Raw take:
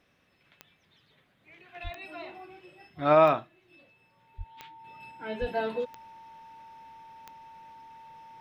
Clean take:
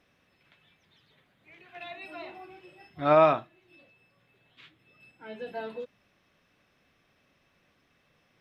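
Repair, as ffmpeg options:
-filter_complex "[0:a]adeclick=t=4,bandreject=f=900:w=30,asplit=3[s0][s1][s2];[s0]afade=t=out:st=1.83:d=0.02[s3];[s1]highpass=f=140:w=0.5412,highpass=f=140:w=1.3066,afade=t=in:st=1.83:d=0.02,afade=t=out:st=1.95:d=0.02[s4];[s2]afade=t=in:st=1.95:d=0.02[s5];[s3][s4][s5]amix=inputs=3:normalize=0,asplit=3[s6][s7][s8];[s6]afade=t=out:st=4.37:d=0.02[s9];[s7]highpass=f=140:w=0.5412,highpass=f=140:w=1.3066,afade=t=in:st=4.37:d=0.02,afade=t=out:st=4.49:d=0.02[s10];[s8]afade=t=in:st=4.49:d=0.02[s11];[s9][s10][s11]amix=inputs=3:normalize=0,asplit=3[s12][s13][s14];[s12]afade=t=out:st=5.4:d=0.02[s15];[s13]highpass=f=140:w=0.5412,highpass=f=140:w=1.3066,afade=t=in:st=5.4:d=0.02,afade=t=out:st=5.52:d=0.02[s16];[s14]afade=t=in:st=5.52:d=0.02[s17];[s15][s16][s17]amix=inputs=3:normalize=0,asetnsamples=n=441:p=0,asendcmd='4.84 volume volume -6.5dB',volume=1"

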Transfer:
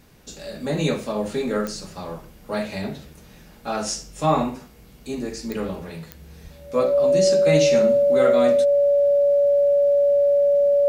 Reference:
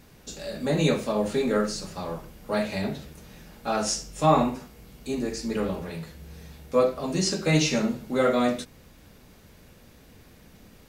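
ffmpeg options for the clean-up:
-filter_complex "[0:a]adeclick=t=4,bandreject=f=570:w=30,asplit=3[s0][s1][s2];[s0]afade=t=out:st=6.43:d=0.02[s3];[s1]highpass=f=140:w=0.5412,highpass=f=140:w=1.3066,afade=t=in:st=6.43:d=0.02,afade=t=out:st=6.55:d=0.02[s4];[s2]afade=t=in:st=6.55:d=0.02[s5];[s3][s4][s5]amix=inputs=3:normalize=0"

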